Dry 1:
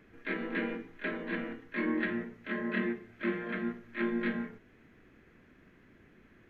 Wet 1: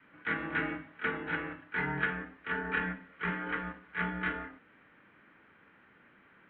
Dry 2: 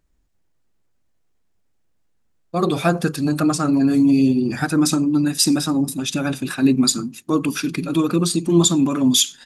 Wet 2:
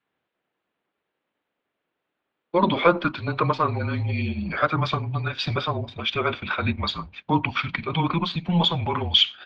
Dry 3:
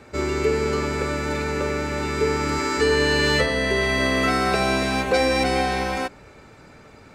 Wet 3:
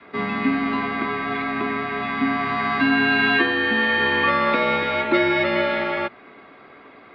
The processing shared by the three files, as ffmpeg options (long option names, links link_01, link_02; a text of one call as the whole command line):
ffmpeg -i in.wav -af "highpass=frequency=440:width_type=q:width=0.5412,highpass=frequency=440:width_type=q:width=1.307,lowpass=frequency=3600:width_type=q:width=0.5176,lowpass=frequency=3600:width_type=q:width=0.7071,lowpass=frequency=3600:width_type=q:width=1.932,afreqshift=-170,adynamicequalizer=threshold=0.0112:dfrequency=450:dqfactor=1.3:tfrequency=450:tqfactor=1.3:attack=5:release=100:ratio=0.375:range=2:mode=cutabove:tftype=bell,volume=4.5dB" out.wav